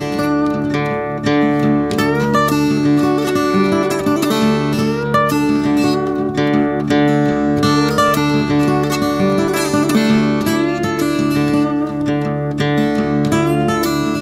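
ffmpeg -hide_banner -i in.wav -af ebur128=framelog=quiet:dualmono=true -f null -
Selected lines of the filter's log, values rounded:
Integrated loudness:
  I:         -12.4 LUFS
  Threshold: -22.4 LUFS
Loudness range:
  LRA:         1.7 LU
  Threshold: -32.2 LUFS
  LRA low:   -13.3 LUFS
  LRA high:  -11.6 LUFS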